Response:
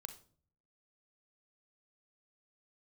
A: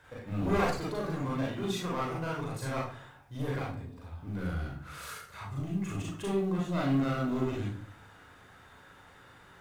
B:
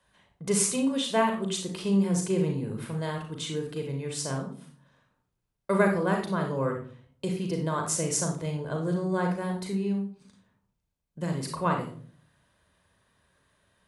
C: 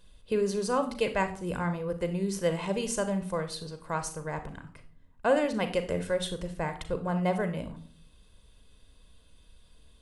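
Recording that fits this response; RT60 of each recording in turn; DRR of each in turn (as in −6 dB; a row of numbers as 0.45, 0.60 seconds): C; 0.45, 0.45, 0.50 seconds; −4.0, 2.5, 8.5 decibels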